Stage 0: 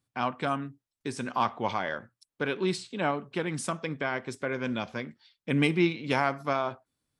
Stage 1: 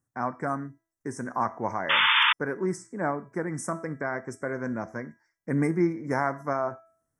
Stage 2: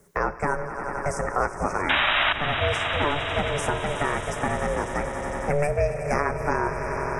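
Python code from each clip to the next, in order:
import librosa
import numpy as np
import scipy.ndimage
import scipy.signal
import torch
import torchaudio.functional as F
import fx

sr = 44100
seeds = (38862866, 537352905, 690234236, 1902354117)

y1 = scipy.signal.sosfilt(scipy.signal.ellip(3, 1.0, 40, [1900.0, 5800.0], 'bandstop', fs=sr, output='sos'), x)
y1 = fx.comb_fb(y1, sr, f0_hz=330.0, decay_s=0.51, harmonics='all', damping=0.0, mix_pct=60)
y1 = fx.spec_paint(y1, sr, seeds[0], shape='noise', start_s=1.89, length_s=0.44, low_hz=860.0, high_hz=3600.0, level_db=-29.0)
y1 = y1 * 10.0 ** (8.0 / 20.0)
y2 = fx.echo_swell(y1, sr, ms=91, loudest=5, wet_db=-16)
y2 = y2 * np.sin(2.0 * np.pi * 290.0 * np.arange(len(y2)) / sr)
y2 = fx.band_squash(y2, sr, depth_pct=70)
y2 = y2 * 10.0 ** (5.5 / 20.0)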